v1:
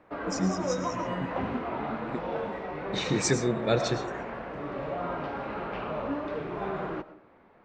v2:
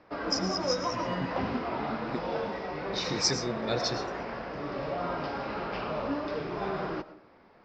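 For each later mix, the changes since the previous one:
first voice -7.0 dB; master: add resonant low-pass 5.1 kHz, resonance Q 9.5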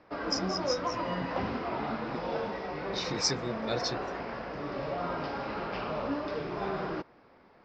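second voice -5.0 dB; reverb: off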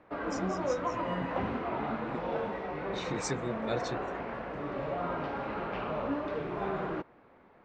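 master: remove resonant low-pass 5.1 kHz, resonance Q 9.5

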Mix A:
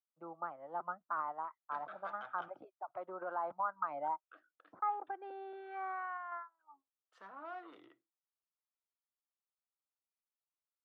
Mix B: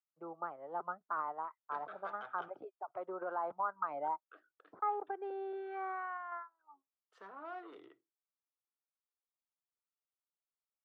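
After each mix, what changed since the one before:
master: add peaking EQ 420 Hz +12 dB 0.3 oct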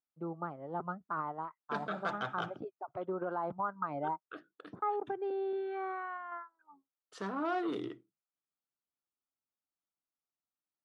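second voice +10.0 dB; master: remove three-band isolator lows -21 dB, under 420 Hz, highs -13 dB, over 2.7 kHz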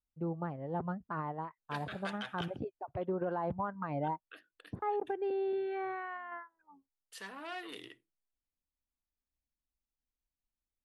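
second voice: add band-pass filter 3.5 kHz, Q 0.61; master: remove cabinet simulation 230–6100 Hz, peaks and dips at 240 Hz -5 dB, 490 Hz -4 dB, 1.3 kHz +9 dB, 1.8 kHz -7 dB, 2.7 kHz -7 dB, 4.5 kHz -4 dB

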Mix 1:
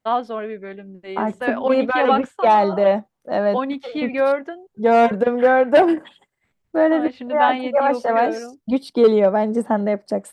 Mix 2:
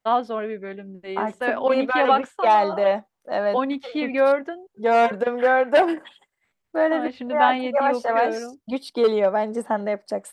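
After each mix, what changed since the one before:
second voice: add bass shelf 380 Hz -12 dB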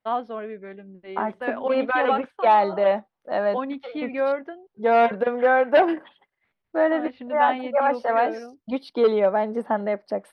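first voice -5.0 dB; master: add boxcar filter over 6 samples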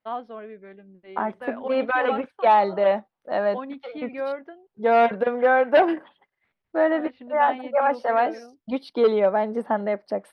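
first voice -5.5 dB

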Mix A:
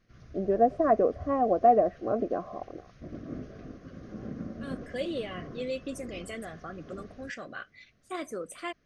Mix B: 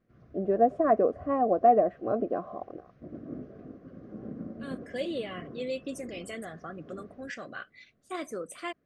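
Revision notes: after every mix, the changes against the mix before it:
background: add band-pass filter 350 Hz, Q 0.53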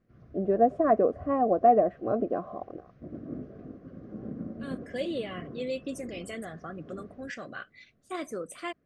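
master: add bass shelf 190 Hz +4.5 dB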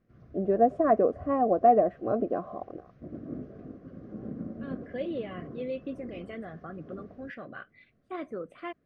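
second voice: add distance through air 450 m

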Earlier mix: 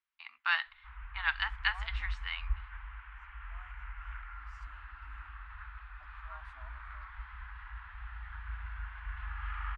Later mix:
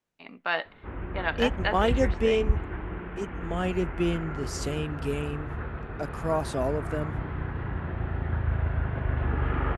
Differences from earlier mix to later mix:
second voice: remove two resonant band-passes 410 Hz, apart 1 oct; background +6.5 dB; master: remove inverse Chebyshev band-stop 100–590 Hz, stop band 40 dB

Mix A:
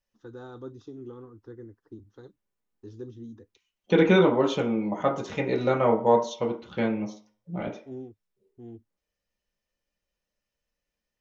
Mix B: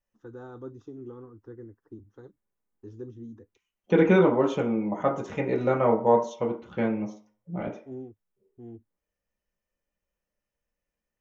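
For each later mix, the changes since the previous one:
master: add peaking EQ 4.2 kHz -12 dB 1 oct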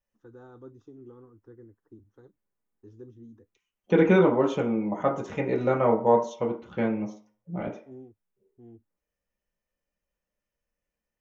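first voice -6.0 dB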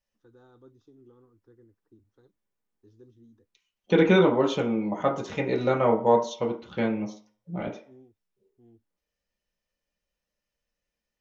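first voice -7.5 dB; master: add peaking EQ 4.2 kHz +12 dB 1 oct

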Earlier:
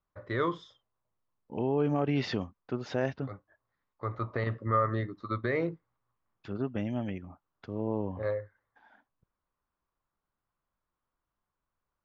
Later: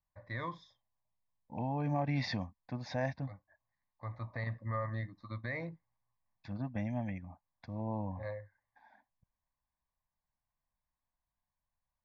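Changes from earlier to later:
first voice -4.0 dB; master: add static phaser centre 2 kHz, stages 8

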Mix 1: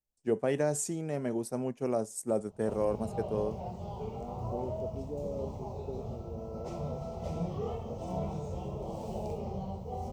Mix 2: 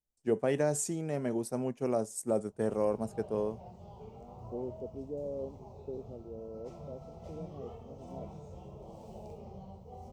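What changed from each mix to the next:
background -10.0 dB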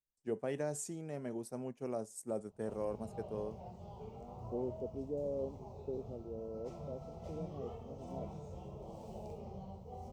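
first voice -8.5 dB

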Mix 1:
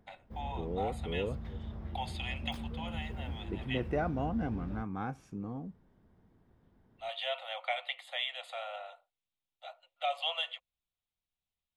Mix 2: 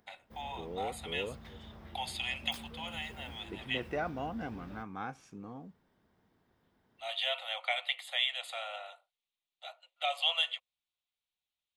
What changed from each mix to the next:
second voice: add distance through air 57 m; master: add tilt EQ +3 dB/octave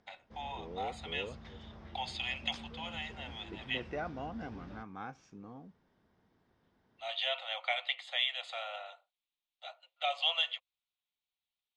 second voice -3.5 dB; master: add Chebyshev low-pass 6.1 kHz, order 3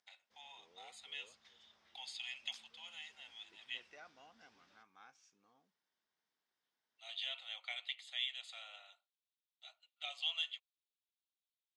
master: add differentiator

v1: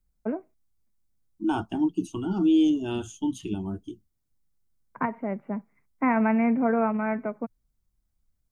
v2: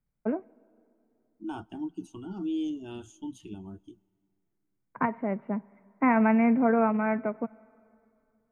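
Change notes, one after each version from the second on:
second voice -11.0 dB; reverb: on, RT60 2.7 s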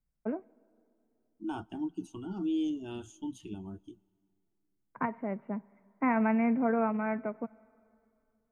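first voice -5.0 dB

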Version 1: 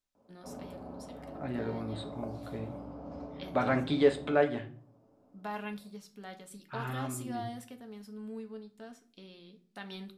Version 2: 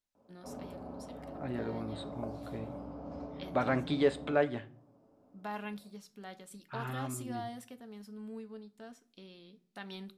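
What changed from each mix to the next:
first voice: send -6.5 dB; second voice: send -7.5 dB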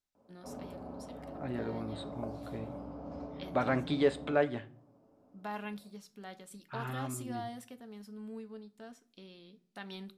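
no change

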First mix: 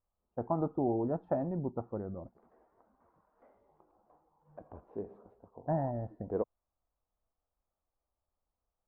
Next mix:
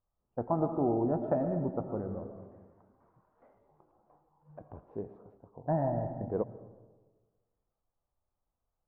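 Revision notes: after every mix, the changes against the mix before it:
second voice: add peaking EQ 130 Hz +14.5 dB 0.41 oct; reverb: on, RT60 1.4 s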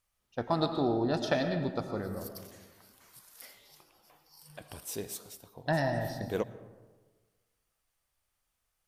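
master: remove low-pass 1 kHz 24 dB/octave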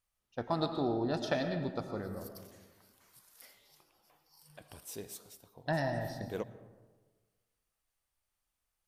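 first voice -3.5 dB; second voice -6.0 dB

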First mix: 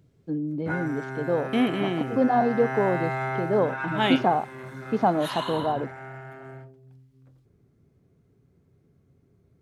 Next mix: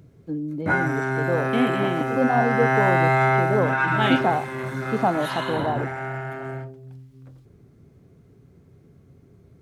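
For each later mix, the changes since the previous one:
background +10.0 dB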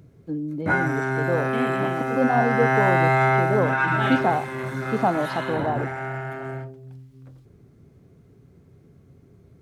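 second voice -6.5 dB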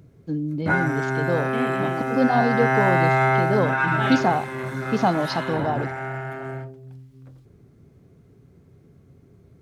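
first voice: remove band-pass filter 530 Hz, Q 0.51

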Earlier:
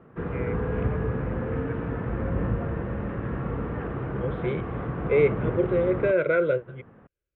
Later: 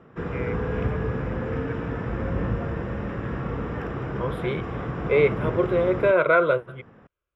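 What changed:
second voice: add high-order bell 940 Hz +15.5 dB 1.1 oct; master: remove distance through air 380 m

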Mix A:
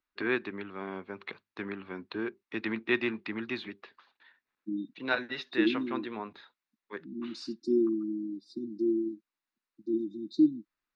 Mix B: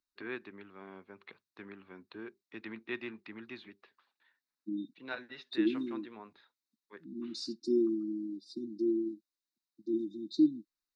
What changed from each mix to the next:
first voice -11.0 dB; second voice: add tilt EQ +1.5 dB/octave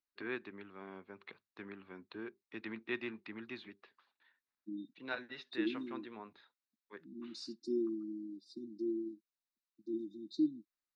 second voice -6.5 dB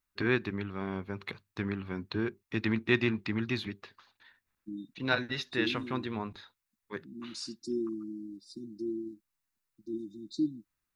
first voice +11.0 dB; master: remove three-band isolator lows -20 dB, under 220 Hz, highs -18 dB, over 4.3 kHz

